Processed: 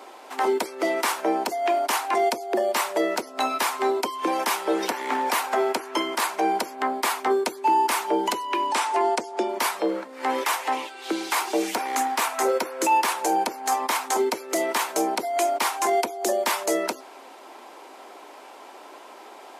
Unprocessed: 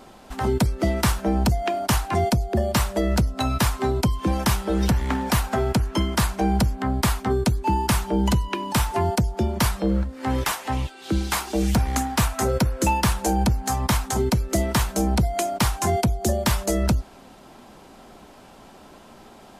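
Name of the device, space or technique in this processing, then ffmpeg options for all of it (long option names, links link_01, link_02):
laptop speaker: -filter_complex "[0:a]asettb=1/sr,asplit=3[link_01][link_02][link_03];[link_01]atrim=end=8.674[link_04];[link_02]atrim=start=8.67:end=9.49,asetpts=PTS-STARTPTS,afade=type=in:duration=0.004:curve=qsin,afade=type=out:start_time=0.816:duration=0.004:curve=qsin,lowpass=frequency=9800:width=0.5412,lowpass=frequency=9800:width=1.3066[link_05];[link_03]atrim=start=9.486[link_06];[link_04][link_05]acrossfade=duration=0.004:curve1=hsin:curve2=qsin[link_07];[link_07][link_06]acrossfade=duration=0.004:curve1=qsin:curve2=hsin,highpass=frequency=330:width=0.5412,highpass=frequency=330:width=1.3066,lowshelf=frequency=220:width_type=q:width=1.5:gain=-7,equalizer=frequency=950:width_type=o:width=0.56:gain=5.5,equalizer=frequency=2200:width_type=o:width=0.52:gain=5,alimiter=limit=-15dB:level=0:latency=1:release=20,volume=1.5dB"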